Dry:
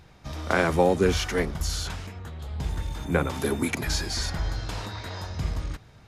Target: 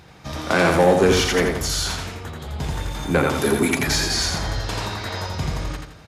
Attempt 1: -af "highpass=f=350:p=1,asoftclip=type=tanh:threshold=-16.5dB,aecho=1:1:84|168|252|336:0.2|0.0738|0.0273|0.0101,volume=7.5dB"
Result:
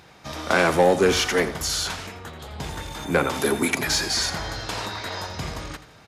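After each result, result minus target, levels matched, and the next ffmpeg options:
echo-to-direct -10 dB; 125 Hz band -5.0 dB
-af "highpass=f=350:p=1,asoftclip=type=tanh:threshold=-16.5dB,aecho=1:1:84|168|252|336|420:0.631|0.233|0.0864|0.032|0.0118,volume=7.5dB"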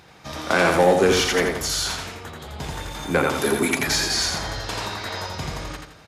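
125 Hz band -5.0 dB
-af "highpass=f=130:p=1,asoftclip=type=tanh:threshold=-16.5dB,aecho=1:1:84|168|252|336|420:0.631|0.233|0.0864|0.032|0.0118,volume=7.5dB"

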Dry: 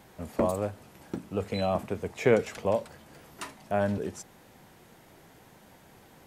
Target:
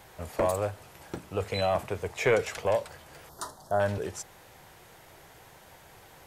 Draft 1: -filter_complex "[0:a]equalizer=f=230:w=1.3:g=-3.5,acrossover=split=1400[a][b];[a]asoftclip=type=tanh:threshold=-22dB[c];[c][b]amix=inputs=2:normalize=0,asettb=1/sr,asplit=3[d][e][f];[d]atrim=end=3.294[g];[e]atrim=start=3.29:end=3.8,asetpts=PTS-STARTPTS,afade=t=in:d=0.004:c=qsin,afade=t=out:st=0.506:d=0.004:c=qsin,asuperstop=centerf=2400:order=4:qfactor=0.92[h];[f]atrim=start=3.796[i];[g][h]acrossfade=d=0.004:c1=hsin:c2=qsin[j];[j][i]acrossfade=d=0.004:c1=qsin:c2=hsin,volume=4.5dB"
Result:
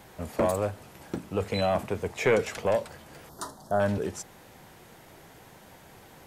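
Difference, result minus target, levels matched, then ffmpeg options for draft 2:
250 Hz band +5.0 dB
-filter_complex "[0:a]equalizer=f=230:w=1.3:g=-13,acrossover=split=1400[a][b];[a]asoftclip=type=tanh:threshold=-22dB[c];[c][b]amix=inputs=2:normalize=0,asettb=1/sr,asplit=3[d][e][f];[d]atrim=end=3.294[g];[e]atrim=start=3.29:end=3.8,asetpts=PTS-STARTPTS,afade=t=in:d=0.004:c=qsin,afade=t=out:st=0.506:d=0.004:c=qsin,asuperstop=centerf=2400:order=4:qfactor=0.92[h];[f]atrim=start=3.796[i];[g][h]acrossfade=d=0.004:c1=hsin:c2=qsin[j];[j][i]acrossfade=d=0.004:c1=qsin:c2=hsin,volume=4.5dB"

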